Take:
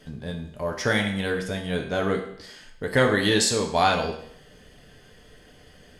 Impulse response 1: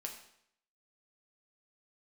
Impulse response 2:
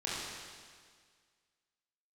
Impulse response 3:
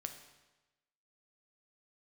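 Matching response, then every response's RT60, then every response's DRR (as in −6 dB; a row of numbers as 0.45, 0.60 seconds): 1; 0.70, 1.8, 1.1 seconds; 1.5, −8.0, 5.5 decibels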